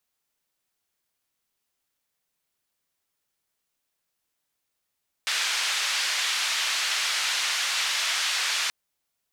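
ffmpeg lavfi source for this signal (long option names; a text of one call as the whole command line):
ffmpeg -f lavfi -i "anoisesrc=color=white:duration=3.43:sample_rate=44100:seed=1,highpass=frequency=1400,lowpass=frequency=4700,volume=-13.7dB" out.wav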